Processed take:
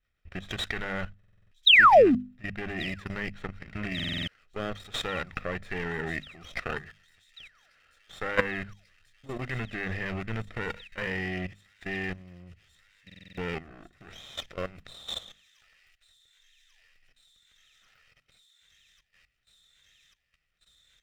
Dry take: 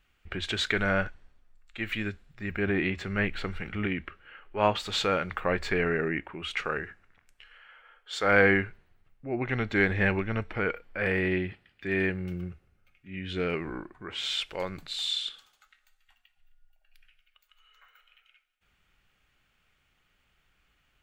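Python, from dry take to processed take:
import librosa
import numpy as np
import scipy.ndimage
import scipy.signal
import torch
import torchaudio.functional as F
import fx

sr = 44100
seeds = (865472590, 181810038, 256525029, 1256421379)

p1 = fx.lower_of_two(x, sr, delay_ms=0.54)
p2 = fx.spec_paint(p1, sr, seeds[0], shape='fall', start_s=1.66, length_s=0.49, low_hz=220.0, high_hz=4100.0, level_db=-14.0)
p3 = fx.peak_eq(p2, sr, hz=2700.0, db=8.0, octaves=0.21)
p4 = fx.echo_wet_highpass(p3, sr, ms=1141, feedback_pct=80, hz=4800.0, wet_db=-11.0)
p5 = np.sign(p4) * np.maximum(np.abs(p4) - 10.0 ** (-35.0 / 20.0), 0.0)
p6 = p4 + F.gain(torch.from_numpy(p5), -4.5).numpy()
p7 = fx.high_shelf(p6, sr, hz=3800.0, db=-9.0)
p8 = fx.level_steps(p7, sr, step_db=16)
p9 = fx.hum_notches(p8, sr, base_hz=50, count=5)
p10 = p9 + 0.4 * np.pad(p9, (int(1.6 * sr / 1000.0), 0))[:len(p9)]
y = fx.buffer_glitch(p10, sr, at_s=(1.19, 3.95, 13.05), block=2048, repeats=6)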